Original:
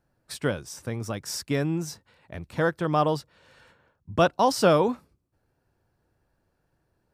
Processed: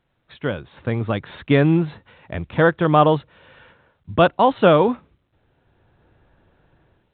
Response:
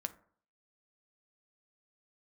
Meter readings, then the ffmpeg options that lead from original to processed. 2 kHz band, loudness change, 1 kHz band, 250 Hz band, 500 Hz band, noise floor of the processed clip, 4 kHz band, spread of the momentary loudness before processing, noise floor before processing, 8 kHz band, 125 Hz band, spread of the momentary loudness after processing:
+7.5 dB, +7.0 dB, +7.0 dB, +8.0 dB, +7.0 dB, -69 dBFS, +3.0 dB, 18 LU, -74 dBFS, under -40 dB, +8.5 dB, 14 LU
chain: -af "dynaudnorm=f=430:g=3:m=15dB,volume=-1dB" -ar 8000 -c:a pcm_alaw

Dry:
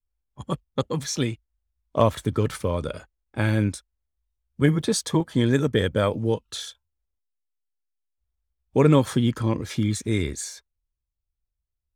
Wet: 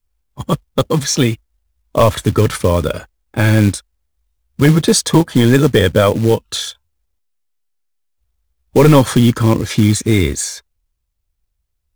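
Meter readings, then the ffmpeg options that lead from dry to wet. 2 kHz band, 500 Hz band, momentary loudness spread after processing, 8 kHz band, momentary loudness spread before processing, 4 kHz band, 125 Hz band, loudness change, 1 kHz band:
+11.0 dB, +10.0 dB, 12 LU, +12.5 dB, 14 LU, +11.5 dB, +10.5 dB, +10.5 dB, +10.0 dB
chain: -af "acrusher=bits=5:mode=log:mix=0:aa=0.000001,apsyclip=14dB,volume=-2dB"

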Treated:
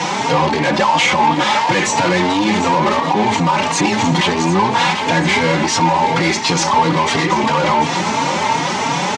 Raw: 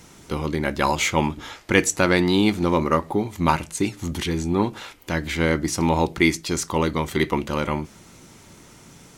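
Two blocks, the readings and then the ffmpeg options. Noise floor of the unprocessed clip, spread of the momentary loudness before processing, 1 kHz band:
-49 dBFS, 9 LU, +13.5 dB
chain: -filter_complex "[0:a]acrusher=bits=8:mix=0:aa=0.000001,aemphasis=mode=reproduction:type=50kf,acompressor=threshold=-27dB:ratio=2.5,asoftclip=type=tanh:threshold=-21dB,asplit=2[a][b];[b]highpass=f=720:p=1,volume=29dB,asoftclip=type=tanh:threshold=-21dB[c];[a][c]amix=inputs=2:normalize=0,lowpass=f=4.9k:p=1,volume=-6dB,highpass=f=110:w=0.5412,highpass=f=110:w=1.3066,equalizer=f=170:t=q:w=4:g=3,equalizer=f=360:t=q:w=4:g=-5,equalizer=f=880:t=q:w=4:g=10,equalizer=f=1.4k:t=q:w=4:g=-5,lowpass=f=7.6k:w=0.5412,lowpass=f=7.6k:w=1.3066,asplit=2[d][e];[e]aecho=0:1:741|1482|2223|2964|3705|4446:0.282|0.155|0.0853|0.0469|0.0258|0.0142[f];[d][f]amix=inputs=2:normalize=0,alimiter=level_in=19dB:limit=-1dB:release=50:level=0:latency=1,asplit=2[g][h];[h]adelay=3.7,afreqshift=2.9[i];[g][i]amix=inputs=2:normalize=1,volume=-2.5dB"

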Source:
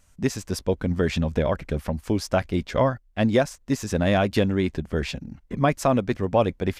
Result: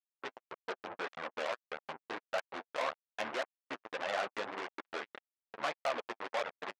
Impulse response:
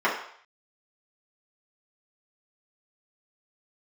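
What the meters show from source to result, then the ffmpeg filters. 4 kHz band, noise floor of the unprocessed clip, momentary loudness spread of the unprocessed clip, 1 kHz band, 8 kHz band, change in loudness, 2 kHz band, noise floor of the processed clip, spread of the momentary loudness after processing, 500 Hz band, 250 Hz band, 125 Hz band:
-9.5 dB, -58 dBFS, 7 LU, -10.0 dB, -18.0 dB, -15.5 dB, -7.5 dB, under -85 dBFS, 11 LU, -16.0 dB, -27.5 dB, -39.5 dB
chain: -filter_complex "[0:a]anlmdn=100,aecho=1:1:773|1546|2319|3092:0.1|0.056|0.0314|0.0176,tremolo=f=77:d=0.71,aresample=16000,acrusher=bits=3:mix=0:aa=0.5,aresample=44100,adynamicequalizer=threshold=0.00447:dfrequency=2500:dqfactor=4.2:tfrequency=2500:tqfactor=4.2:attack=5:release=100:ratio=0.375:range=1.5:mode=cutabove:tftype=bell,acrossover=split=2900[a][b];[a]acontrast=76[c];[c][b]amix=inputs=2:normalize=0,agate=range=-32dB:threshold=-38dB:ratio=16:detection=peak,alimiter=limit=-15.5dB:level=0:latency=1:release=421,lowpass=3.7k,asoftclip=type=tanh:threshold=-28.5dB,highpass=770,flanger=delay=1.4:depth=8.1:regen=-18:speed=1.7:shape=sinusoidal,volume=8dB"

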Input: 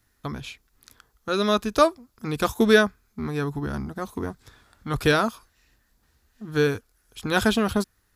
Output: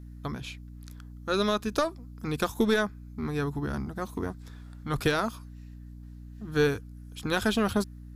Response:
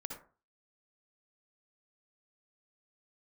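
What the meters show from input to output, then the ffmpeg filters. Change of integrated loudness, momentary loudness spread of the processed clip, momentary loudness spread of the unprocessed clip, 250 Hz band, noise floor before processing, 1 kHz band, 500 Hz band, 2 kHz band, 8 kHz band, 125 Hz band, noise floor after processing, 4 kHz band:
-5.5 dB, 20 LU, 17 LU, -4.5 dB, -68 dBFS, -6.0 dB, -5.5 dB, -6.0 dB, -4.5 dB, -3.0 dB, -45 dBFS, -5.0 dB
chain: -af "aeval=exprs='val(0)+0.01*(sin(2*PI*60*n/s)+sin(2*PI*2*60*n/s)/2+sin(2*PI*3*60*n/s)/3+sin(2*PI*4*60*n/s)/4+sin(2*PI*5*60*n/s)/5)':c=same,aeval=exprs='0.596*(cos(1*acos(clip(val(0)/0.596,-1,1)))-cos(1*PI/2))+0.0841*(cos(2*acos(clip(val(0)/0.596,-1,1)))-cos(2*PI/2))+0.0531*(cos(3*acos(clip(val(0)/0.596,-1,1)))-cos(3*PI/2))':c=same,alimiter=limit=-13.5dB:level=0:latency=1:release=150"

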